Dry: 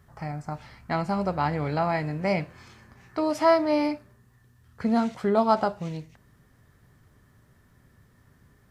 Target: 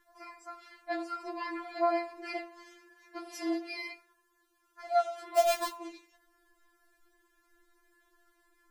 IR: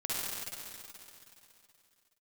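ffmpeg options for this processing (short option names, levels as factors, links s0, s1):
-filter_complex "[0:a]asettb=1/sr,asplit=3[s0][s1][s2];[s0]atrim=end=5.374[s3];[s1]atrim=start=5.37:end=5.77,asetpts=PTS-STARTPTS,afade=t=in:d=0.004:c=qsin,afade=t=out:st=0.396:d=0.004:c=qsin,acrusher=bits=2:mode=log:mix=0:aa=0.000001[s4];[s2]atrim=start=5.766[s5];[s3][s4]acrossfade=d=0.004:c1=hsin:c2=qsin[s6];[s6][s5]acrossfade=d=0.004:c1=qsin:c2=hsin,bandreject=f=170.6:t=h:w=4,bandreject=f=341.2:t=h:w=4,bandreject=f=511.8:t=h:w=4,bandreject=f=682.4:t=h:w=4,bandreject=f=853:t=h:w=4,bandreject=f=1023.6:t=h:w=4,bandreject=f=1194.2:t=h:w=4,bandreject=f=1364.8:t=h:w=4,bandreject=f=1535.4:t=h:w=4,bandreject=f=1706:t=h:w=4,bandreject=f=1876.6:t=h:w=4,bandreject=f=2047.2:t=h:w=4,bandreject=f=2217.8:t=h:w=4,bandreject=f=2388.4:t=h:w=4,bandreject=f=2559:t=h:w=4,bandreject=f=2729.6:t=h:w=4,bandreject=f=2900.2:t=h:w=4,bandreject=f=3070.8:t=h:w=4,bandreject=f=3241.4:t=h:w=4,bandreject=f=3412:t=h:w=4,bandreject=f=3582.6:t=h:w=4,bandreject=f=3753.2:t=h:w=4,bandreject=f=3923.8:t=h:w=4,bandreject=f=4094.4:t=h:w=4,bandreject=f=4265:t=h:w=4,bandreject=f=4435.6:t=h:w=4,bandreject=f=4606.2:t=h:w=4,afftfilt=real='re*4*eq(mod(b,16),0)':imag='im*4*eq(mod(b,16),0)':win_size=2048:overlap=0.75,volume=0.794"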